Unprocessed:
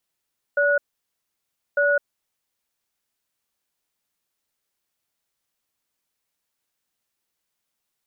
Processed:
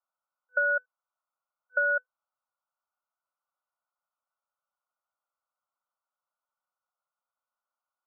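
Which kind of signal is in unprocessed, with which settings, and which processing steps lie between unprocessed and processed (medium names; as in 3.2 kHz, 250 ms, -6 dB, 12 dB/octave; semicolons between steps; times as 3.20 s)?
cadence 575 Hz, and 1.46 kHz, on 0.21 s, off 0.99 s, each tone -19 dBFS 2.27 s
FFT band-pass 500–1500 Hz; tilt shelf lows -9.5 dB, about 1.1 kHz; compression, threshold -23 dBFS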